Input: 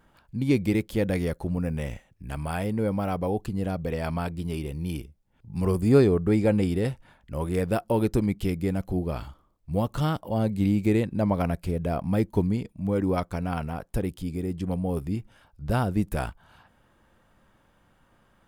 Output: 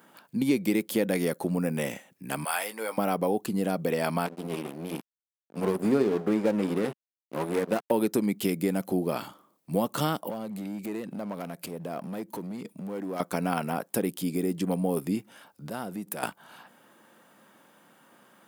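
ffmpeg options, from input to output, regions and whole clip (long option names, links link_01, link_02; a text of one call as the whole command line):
ffmpeg -i in.wav -filter_complex "[0:a]asettb=1/sr,asplit=3[link_01][link_02][link_03];[link_01]atrim=end=2.444[link_04];[link_02]atrim=start=2.44:end=2.98,asetpts=PTS-STARTPTS,afade=type=in:duration=0.004:curve=qsin,afade=type=out:start_time=0.536:duration=0.004:curve=qsin,highpass=950,asplit=2[link_05][link_06];[link_06]adelay=18,volume=-9dB[link_07];[link_05][link_07]amix=inputs=2:normalize=0,atrim=end_sample=23814[link_08];[link_03]atrim=start=2.976[link_09];[link_04][link_08]acrossfade=duration=0.004:curve1=hsin:curve2=qsin[link_10];[link_10][link_09]acrossfade=duration=0.004:curve1=qsin:curve2=hsin,asettb=1/sr,asplit=3[link_11][link_12][link_13];[link_11]atrim=end=4.264[link_14];[link_12]atrim=start=4.26:end=7.91,asetpts=PTS-STARTPTS,afade=type=in:duration=0.004:curve=qsin,afade=type=out:start_time=3.646:duration=0.004:curve=qsin,highshelf=frequency=3000:gain=-11.5,bandreject=frequency=60:width_type=h:width=6,bandreject=frequency=120:width_type=h:width=6,bandreject=frequency=180:width_type=h:width=6,bandreject=frequency=240:width_type=h:width=6,bandreject=frequency=300:width_type=h:width=6,bandreject=frequency=360:width_type=h:width=6,bandreject=frequency=420:width_type=h:width=6,aeval=exprs='sgn(val(0))*max(abs(val(0))-0.0188,0)':channel_layout=same[link_15];[link_13]atrim=start=7.906[link_16];[link_14][link_15]acrossfade=duration=0.004:curve1=hsin:curve2=qsin[link_17];[link_17][link_16]acrossfade=duration=0.004:curve1=qsin:curve2=hsin,asettb=1/sr,asplit=3[link_18][link_19][link_20];[link_18]atrim=end=10.294[link_21];[link_19]atrim=start=10.29:end=13.2,asetpts=PTS-STARTPTS,afade=type=in:duration=0.004:curve=qsin,afade=type=out:start_time=2.906:duration=0.004:curve=qsin,acompressor=threshold=-35dB:ratio=5:attack=3.2:release=140:knee=1:detection=peak,asoftclip=type=hard:threshold=-34dB[link_22];[link_20]atrim=start=13.196[link_23];[link_21][link_22]acrossfade=duration=0.004:curve1=hsin:curve2=qsin[link_24];[link_24][link_23]acrossfade=duration=0.004:curve1=qsin:curve2=hsin,asettb=1/sr,asplit=3[link_25][link_26][link_27];[link_25]atrim=end=15.684[link_28];[link_26]atrim=start=15.68:end=16.23,asetpts=PTS-STARTPTS,afade=type=in:duration=0.004:curve=qsin,afade=type=out:start_time=0.546:duration=0.004:curve=qsin,aeval=exprs='if(lt(val(0),0),0.708*val(0),val(0))':channel_layout=same,acompressor=threshold=-36dB:ratio=5:attack=3.2:release=140:knee=1:detection=peak[link_29];[link_27]atrim=start=16.226[link_30];[link_28][link_29]acrossfade=duration=0.004:curve1=hsin:curve2=qsin[link_31];[link_31][link_30]acrossfade=duration=0.004:curve1=qsin:curve2=hsin,highpass=frequency=190:width=0.5412,highpass=frequency=190:width=1.3066,highshelf=frequency=8800:gain=11.5,acompressor=threshold=-30dB:ratio=2.5,volume=6dB" out.wav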